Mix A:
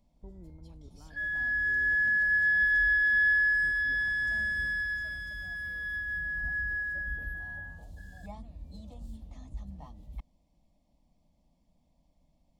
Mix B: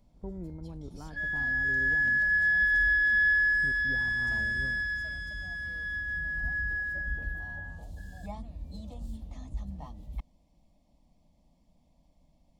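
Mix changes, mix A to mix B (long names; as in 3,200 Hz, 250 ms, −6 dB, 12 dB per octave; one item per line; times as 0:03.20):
speech +11.0 dB
first sound +4.0 dB
second sound: add low-pass with resonance 7,100 Hz, resonance Q 1.5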